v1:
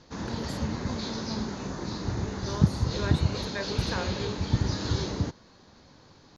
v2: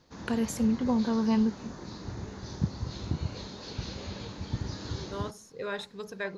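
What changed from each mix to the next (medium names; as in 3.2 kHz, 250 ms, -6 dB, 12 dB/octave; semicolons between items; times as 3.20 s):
first voice +11.0 dB; second voice: entry +2.65 s; background -8.0 dB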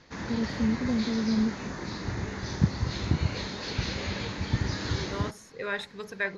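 first voice: add boxcar filter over 48 samples; background +5.5 dB; master: add peaking EQ 2 kHz +9.5 dB 0.88 oct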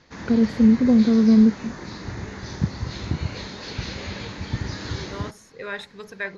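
first voice +12.0 dB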